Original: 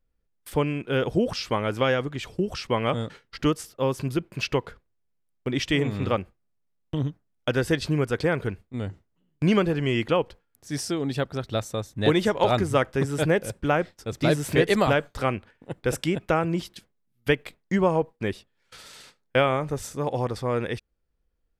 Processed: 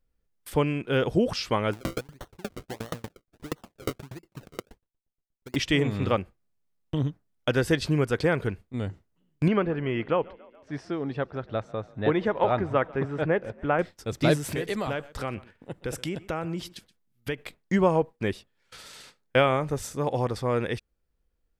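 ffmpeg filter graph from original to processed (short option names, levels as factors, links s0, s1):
-filter_complex "[0:a]asettb=1/sr,asplit=3[s0][s1][s2];[s0]atrim=end=1.734[s3];[s1]atrim=start=1.73:end=5.56,asetpts=PTS-STARTPTS,afade=t=in:d=0.004:c=qsin,afade=t=out:st=3.826:d=0.004:c=qsin,acrusher=samples=35:mix=1:aa=0.000001:lfo=1:lforange=35:lforate=1.5,aeval=exprs='val(0)*pow(10,-35*if(lt(mod(8.4*n/s,1),2*abs(8.4)/1000),1-mod(8.4*n/s,1)/(2*abs(8.4)/1000),(mod(8.4*n/s,1)-2*abs(8.4)/1000)/(1-2*abs(8.4)/1000))/20)':c=same[s4];[s2]atrim=start=5.556[s5];[s3][s4]acrossfade=d=0.004:c1=hsin:c2=qsin[s6];[s6][s5]acrossfade=d=0.004:c1=qsin:c2=hsin,asettb=1/sr,asplit=3[s7][s8][s9];[s7]atrim=end=9.484[s10];[s8]atrim=start=9.48:end=13.79,asetpts=PTS-STARTPTS,afade=t=in:d=0.004:c=qsin,afade=t=out:st=4.306:d=0.004:c=qsin,lowpass=1800,lowshelf=f=410:g=-5.5,asplit=6[s11][s12][s13][s14][s15][s16];[s12]adelay=141,afreqshift=31,volume=0.0668[s17];[s13]adelay=282,afreqshift=62,volume=0.0427[s18];[s14]adelay=423,afreqshift=93,volume=0.0272[s19];[s15]adelay=564,afreqshift=124,volume=0.0176[s20];[s16]adelay=705,afreqshift=155,volume=0.0112[s21];[s11][s17][s18][s19][s20][s21]amix=inputs=6:normalize=0,atrim=end_sample=190071[s22];[s9]atrim=start=13.786[s23];[s10][s22]acrossfade=d=0.004:c1=hsin:c2=qsin[s24];[s24][s23]acrossfade=d=0.004:c1=qsin:c2=hsin,asettb=1/sr,asplit=3[s25][s26][s27];[s25]atrim=end=14.374[s28];[s26]atrim=start=14.37:end=17.38,asetpts=PTS-STARTPTS,afade=t=in:d=0.004:c=qsin,afade=t=out:st=3.006:d=0.004:c=qsin,acompressor=threshold=0.0316:ratio=2.5:attack=3.2:release=140:knee=1:detection=peak,aecho=1:1:125:0.1,atrim=end_sample=132741[s29];[s27]atrim=start=17.376[s30];[s28][s29]acrossfade=d=0.004:c1=hsin:c2=qsin[s31];[s31][s30]acrossfade=d=0.004:c1=qsin:c2=hsin"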